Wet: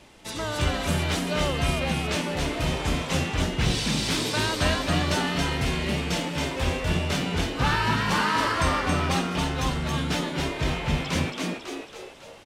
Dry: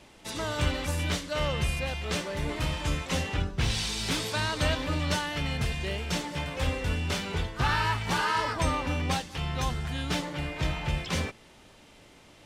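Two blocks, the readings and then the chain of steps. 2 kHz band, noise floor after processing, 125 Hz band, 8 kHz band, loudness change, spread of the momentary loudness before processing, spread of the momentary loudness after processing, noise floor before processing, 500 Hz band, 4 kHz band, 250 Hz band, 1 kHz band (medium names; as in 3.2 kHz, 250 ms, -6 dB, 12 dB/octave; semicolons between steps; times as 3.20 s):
+4.0 dB, -44 dBFS, +3.5 dB, +4.0 dB, +4.0 dB, 5 LU, 5 LU, -55 dBFS, +5.0 dB, +4.5 dB, +7.0 dB, +4.5 dB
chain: frequency-shifting echo 275 ms, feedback 51%, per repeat +96 Hz, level -3.5 dB; trim +2 dB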